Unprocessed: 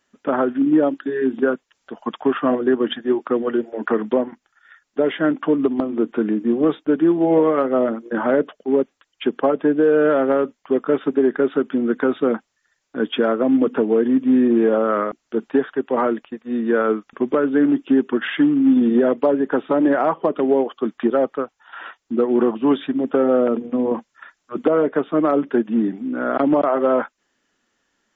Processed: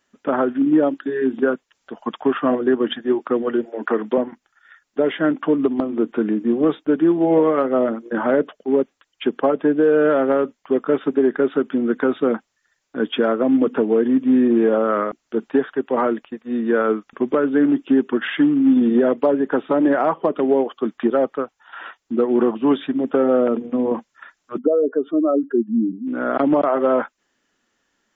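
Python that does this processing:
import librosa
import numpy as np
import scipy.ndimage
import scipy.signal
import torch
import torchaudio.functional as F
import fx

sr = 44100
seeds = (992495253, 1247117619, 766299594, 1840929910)

y = fx.highpass(x, sr, hz=220.0, slope=12, at=(3.65, 4.18))
y = fx.spec_expand(y, sr, power=2.3, at=(24.57, 26.06), fade=0.02)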